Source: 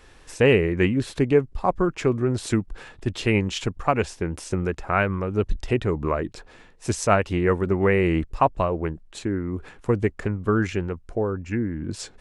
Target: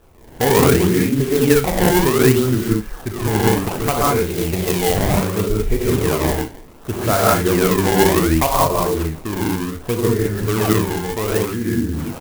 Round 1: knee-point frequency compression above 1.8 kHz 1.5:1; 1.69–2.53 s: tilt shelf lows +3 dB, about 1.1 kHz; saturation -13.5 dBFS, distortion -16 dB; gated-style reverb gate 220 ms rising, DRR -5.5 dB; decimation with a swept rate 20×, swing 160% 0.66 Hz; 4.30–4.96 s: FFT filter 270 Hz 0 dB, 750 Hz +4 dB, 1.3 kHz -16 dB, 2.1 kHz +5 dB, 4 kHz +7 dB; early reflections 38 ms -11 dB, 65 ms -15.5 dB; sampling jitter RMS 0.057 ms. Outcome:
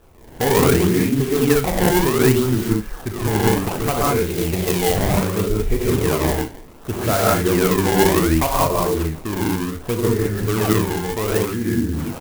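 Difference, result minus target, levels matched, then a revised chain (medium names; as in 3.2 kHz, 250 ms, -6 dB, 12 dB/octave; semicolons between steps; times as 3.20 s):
saturation: distortion +13 dB
knee-point frequency compression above 1.8 kHz 1.5:1; 1.69–2.53 s: tilt shelf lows +3 dB, about 1.1 kHz; saturation -5 dBFS, distortion -28 dB; gated-style reverb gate 220 ms rising, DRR -5.5 dB; decimation with a swept rate 20×, swing 160% 0.66 Hz; 4.30–4.96 s: FFT filter 270 Hz 0 dB, 750 Hz +4 dB, 1.3 kHz -16 dB, 2.1 kHz +5 dB, 4 kHz +7 dB; early reflections 38 ms -11 dB, 65 ms -15.5 dB; sampling jitter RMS 0.057 ms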